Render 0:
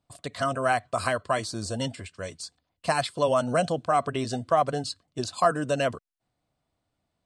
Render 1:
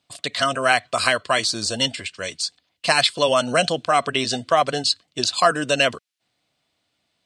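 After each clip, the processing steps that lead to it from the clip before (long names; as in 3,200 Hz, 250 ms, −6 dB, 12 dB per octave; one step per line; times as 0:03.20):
meter weighting curve D
level +4.5 dB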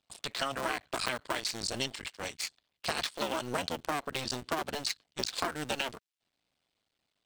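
sub-harmonics by changed cycles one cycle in 2, muted
downward compressor 6 to 1, threshold −22 dBFS, peak gain reduction 9.5 dB
level −6.5 dB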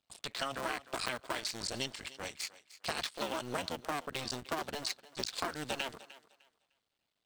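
feedback echo with a high-pass in the loop 303 ms, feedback 24%, high-pass 340 Hz, level −16.5 dB
level −3.5 dB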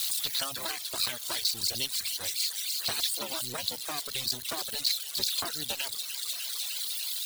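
spike at every zero crossing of −23 dBFS
graphic EQ with 15 bands 100 Hz +7 dB, 4,000 Hz +11 dB, 10,000 Hz +3 dB
reverb reduction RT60 1.9 s
level −2 dB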